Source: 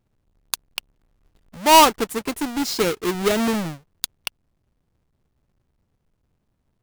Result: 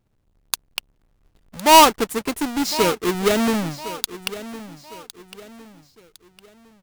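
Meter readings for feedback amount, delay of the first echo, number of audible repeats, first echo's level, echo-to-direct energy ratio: 37%, 1,058 ms, 3, −15.0 dB, −14.5 dB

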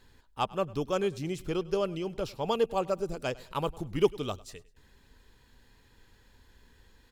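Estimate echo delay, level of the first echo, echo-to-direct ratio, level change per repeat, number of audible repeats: 101 ms, −21.5 dB, −21.0 dB, −8.5 dB, 2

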